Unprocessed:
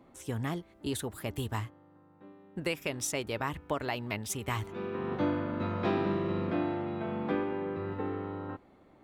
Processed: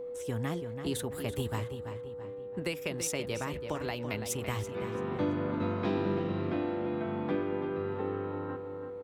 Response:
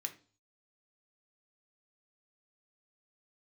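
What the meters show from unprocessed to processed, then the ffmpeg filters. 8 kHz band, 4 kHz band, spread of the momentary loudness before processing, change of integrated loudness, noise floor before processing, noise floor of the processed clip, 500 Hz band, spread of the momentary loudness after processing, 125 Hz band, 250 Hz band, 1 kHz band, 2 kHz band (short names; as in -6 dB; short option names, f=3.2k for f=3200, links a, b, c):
0.0 dB, -0.5 dB, 7 LU, -0.5 dB, -60 dBFS, -41 dBFS, +1.5 dB, 7 LU, +0.5 dB, 0.0 dB, -2.0 dB, -2.0 dB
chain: -filter_complex "[0:a]acrossover=split=340|3000[a][b][c];[b]acompressor=threshold=-35dB:ratio=6[d];[a][d][c]amix=inputs=3:normalize=0,aeval=exprs='val(0)+0.0141*sin(2*PI*490*n/s)':c=same,asplit=2[e][f];[f]adelay=334,lowpass=f=3.9k:p=1,volume=-8dB,asplit=2[g][h];[h]adelay=334,lowpass=f=3.9k:p=1,volume=0.46,asplit=2[i][j];[j]adelay=334,lowpass=f=3.9k:p=1,volume=0.46,asplit=2[k][l];[l]adelay=334,lowpass=f=3.9k:p=1,volume=0.46,asplit=2[m][n];[n]adelay=334,lowpass=f=3.9k:p=1,volume=0.46[o];[e][g][i][k][m][o]amix=inputs=6:normalize=0"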